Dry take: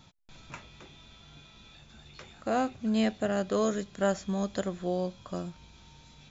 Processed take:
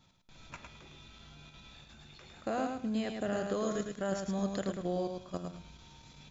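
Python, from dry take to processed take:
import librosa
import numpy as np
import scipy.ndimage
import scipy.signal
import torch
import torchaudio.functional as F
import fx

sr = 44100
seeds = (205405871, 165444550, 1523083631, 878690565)

p1 = fx.level_steps(x, sr, step_db=11)
y = p1 + fx.echo_feedback(p1, sr, ms=107, feedback_pct=22, wet_db=-5.0, dry=0)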